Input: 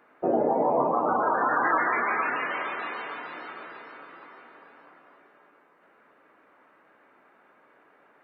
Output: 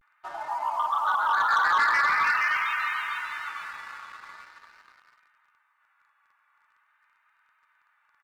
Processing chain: inverse Chebyshev high-pass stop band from 520 Hz, stop band 40 dB; comb 3.4 ms, depth 47%; vibrato 0.44 Hz 59 cents; waveshaping leveller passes 2; trim -1.5 dB

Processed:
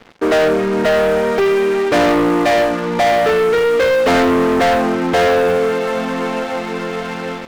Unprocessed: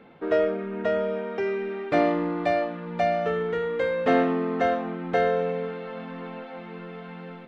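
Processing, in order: peaking EQ 160 Hz -12.5 dB 0.34 oct; waveshaping leveller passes 5

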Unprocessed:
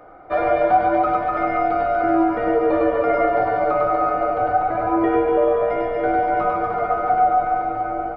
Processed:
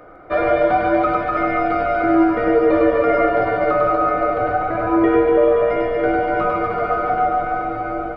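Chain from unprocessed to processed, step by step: peaking EQ 810 Hz -9 dB 0.48 oct; on a send: feedback echo behind a high-pass 157 ms, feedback 79%, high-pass 2 kHz, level -9 dB; on the sum: trim +4.5 dB

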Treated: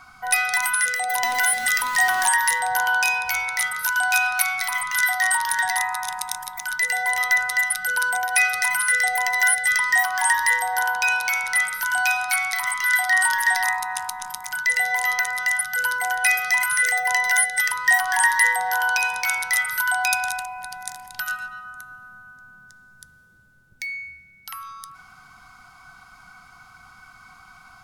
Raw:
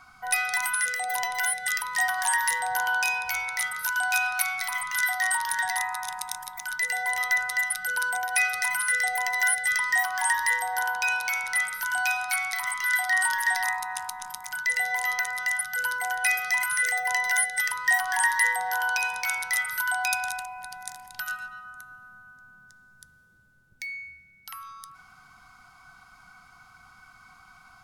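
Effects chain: 1.23–2.29 s: jump at every zero crossing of -33 dBFS; trim +5 dB

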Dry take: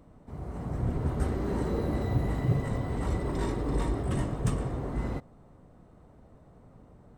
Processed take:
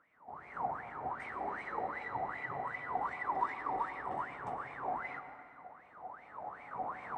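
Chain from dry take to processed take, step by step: recorder AGC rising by 12 dB/s; wah-wah 2.6 Hz 740–2300 Hz, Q 15; reverberation RT60 2.3 s, pre-delay 98 ms, DRR 9.5 dB; trim +14 dB

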